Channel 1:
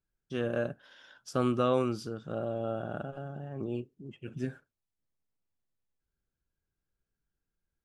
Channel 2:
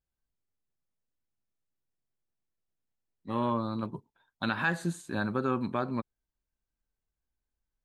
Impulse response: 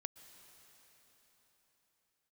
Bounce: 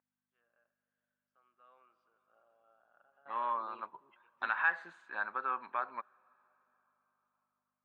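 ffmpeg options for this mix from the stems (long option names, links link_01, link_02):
-filter_complex "[0:a]volume=-3dB,afade=type=in:start_time=1.41:duration=0.56:silence=0.281838,afade=type=in:start_time=2.93:duration=0.31:silence=0.398107,asplit=2[link_01][link_02];[link_02]volume=-11.5dB[link_03];[1:a]volume=-0.5dB,asplit=3[link_04][link_05][link_06];[link_05]volume=-15dB[link_07];[link_06]apad=whole_len=345857[link_08];[link_01][link_08]sidechaingate=range=-33dB:threshold=-59dB:ratio=16:detection=peak[link_09];[2:a]atrim=start_sample=2205[link_10];[link_03][link_07]amix=inputs=2:normalize=0[link_11];[link_11][link_10]afir=irnorm=-1:irlink=0[link_12];[link_09][link_04][link_12]amix=inputs=3:normalize=0,aeval=exprs='val(0)+0.002*(sin(2*PI*50*n/s)+sin(2*PI*2*50*n/s)/2+sin(2*PI*3*50*n/s)/3+sin(2*PI*4*50*n/s)/4+sin(2*PI*5*50*n/s)/5)':channel_layout=same,asuperpass=centerf=1400:order=4:qfactor=0.98"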